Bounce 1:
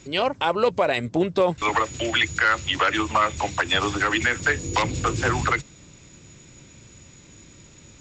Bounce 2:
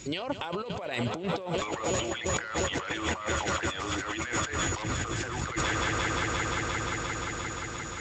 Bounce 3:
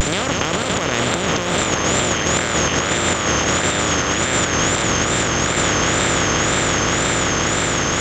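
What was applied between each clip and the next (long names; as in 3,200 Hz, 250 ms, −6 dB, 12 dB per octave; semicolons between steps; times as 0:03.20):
high-shelf EQ 5,700 Hz +6.5 dB; echo that builds up and dies away 175 ms, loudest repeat 5, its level −17.5 dB; compressor whose output falls as the input rises −29 dBFS, ratio −1; level −3 dB
compressor on every frequency bin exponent 0.2; high-shelf EQ 7,000 Hz +11 dB; tape wow and flutter 120 cents; level +3 dB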